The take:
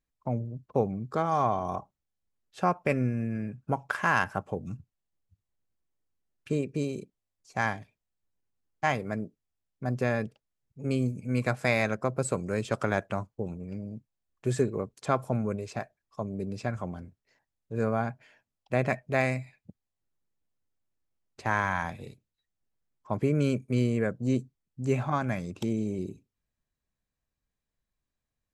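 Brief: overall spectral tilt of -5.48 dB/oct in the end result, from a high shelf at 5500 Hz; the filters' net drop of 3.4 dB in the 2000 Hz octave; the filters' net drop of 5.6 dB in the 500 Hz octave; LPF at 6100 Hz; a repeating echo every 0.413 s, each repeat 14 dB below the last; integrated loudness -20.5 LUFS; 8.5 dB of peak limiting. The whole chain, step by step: LPF 6100 Hz; bell 500 Hz -7 dB; bell 2000 Hz -3.5 dB; high shelf 5500 Hz -3 dB; limiter -21.5 dBFS; feedback echo 0.413 s, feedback 20%, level -14 dB; gain +15 dB

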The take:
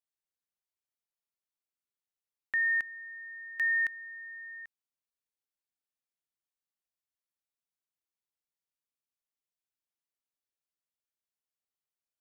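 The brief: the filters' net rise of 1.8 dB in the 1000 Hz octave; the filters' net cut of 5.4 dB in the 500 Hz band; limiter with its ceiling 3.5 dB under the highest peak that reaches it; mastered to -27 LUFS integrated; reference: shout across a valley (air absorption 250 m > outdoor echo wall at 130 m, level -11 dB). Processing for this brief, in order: bell 500 Hz -8.5 dB; bell 1000 Hz +6 dB; limiter -26 dBFS; air absorption 250 m; outdoor echo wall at 130 m, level -11 dB; gain +8 dB

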